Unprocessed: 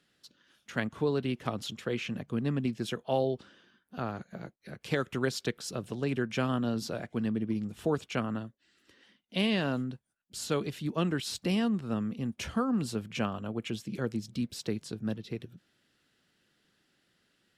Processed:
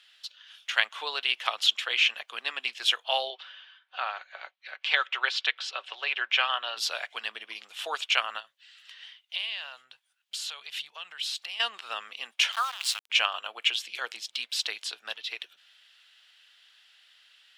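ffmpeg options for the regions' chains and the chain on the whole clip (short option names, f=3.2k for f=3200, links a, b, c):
-filter_complex "[0:a]asettb=1/sr,asplit=3[a][b][c];[a]atrim=end=3.304[d];[b]atrim=start=3.3:end=6.77,asetpts=PTS-STARTPTS,afade=t=in:d=0.004:c=qsin,afade=t=out:st=3.466:d=0.004:c=qsin,highpass=420,lowpass=3.4k,aecho=1:1:5.3:0.32,atrim=end_sample=153027[e];[c]atrim=start=6.766[f];[d][e]acrossfade=d=0.004:c1=hsin:c2=qsin[g];[g][f]acrossfade=d=0.004:c1=qsin:c2=hsin,asettb=1/sr,asplit=3[h][i][j];[h]atrim=end=8.404[k];[i]atrim=start=8.4:end=11.6,asetpts=PTS-STARTPTS,afade=t=in:d=0.004:c=qsin,afade=t=out:st=3.196:d=0.004:c=qsin,acompressor=threshold=-44dB:ratio=4:attack=3.2:release=140:knee=1:detection=peak,lowshelf=f=200:t=q:w=3:g=11[l];[j]atrim=start=11.596[m];[k][l]acrossfade=d=0.004:c1=hsin:c2=qsin[n];[n][m]acrossfade=d=0.004:c1=qsin:c2=hsin,asettb=1/sr,asplit=3[o][p][q];[o]atrim=end=12.524[r];[p]atrim=start=12.52:end=13.1,asetpts=PTS-STARTPTS,afade=t=in:d=0.004:c=qsin,afade=t=out:st=0.576:d=0.004:c=qsin,highpass=f=740:w=0.5412,highpass=f=740:w=1.3066,highshelf=f=4.2k:g=5.5,aeval=exprs='val(0)*gte(abs(val(0)),0.00631)':c=same[s];[q]atrim=start=13.096[t];[r][s]acrossfade=d=0.004:c1=hsin:c2=qsin[u];[u][t]acrossfade=d=0.004:c1=qsin:c2=hsin,highpass=f=760:w=0.5412,highpass=f=760:w=1.3066,equalizer=f=3.1k:t=o:w=1.3:g=14,volume=5dB"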